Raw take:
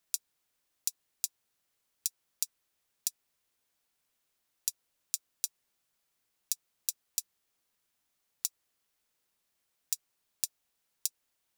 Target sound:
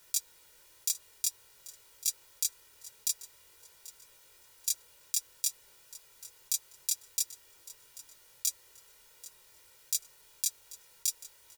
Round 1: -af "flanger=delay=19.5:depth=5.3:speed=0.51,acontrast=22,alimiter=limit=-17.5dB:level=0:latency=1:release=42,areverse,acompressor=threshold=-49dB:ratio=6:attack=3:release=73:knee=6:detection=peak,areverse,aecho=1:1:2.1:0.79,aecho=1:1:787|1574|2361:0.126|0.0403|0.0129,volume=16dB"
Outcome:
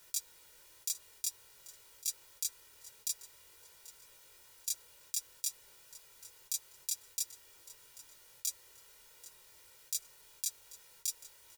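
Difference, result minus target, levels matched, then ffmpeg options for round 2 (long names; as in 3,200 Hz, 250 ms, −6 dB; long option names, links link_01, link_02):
downward compressor: peak gain reduction +6 dB
-af "flanger=delay=19.5:depth=5.3:speed=0.51,acontrast=22,alimiter=limit=-17.5dB:level=0:latency=1:release=42,areverse,acompressor=threshold=-42dB:ratio=6:attack=3:release=73:knee=6:detection=peak,areverse,aecho=1:1:2.1:0.79,aecho=1:1:787|1574|2361:0.126|0.0403|0.0129,volume=16dB"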